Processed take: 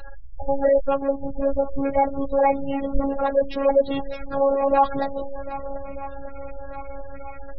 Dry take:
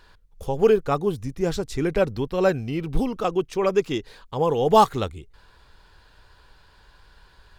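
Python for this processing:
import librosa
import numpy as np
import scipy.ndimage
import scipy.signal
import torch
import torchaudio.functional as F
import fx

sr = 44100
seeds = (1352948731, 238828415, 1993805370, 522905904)

y = fx.pitch_trill(x, sr, semitones=6.0, every_ms=217)
y = fx.power_curve(y, sr, exponent=0.5)
y = scipy.signal.sosfilt(scipy.signal.butter(4, 4900.0, 'lowpass', fs=sr, output='sos'), y)
y = fx.echo_swing(y, sr, ms=1237, ratio=1.5, feedback_pct=56, wet_db=-15)
y = fx.robotise(y, sr, hz=275.0)
y = fx.curve_eq(y, sr, hz=(130.0, 280.0, 630.0, 1100.0), db=(0, -8, 0, -7))
y = fx.spec_gate(y, sr, threshold_db=-25, keep='strong')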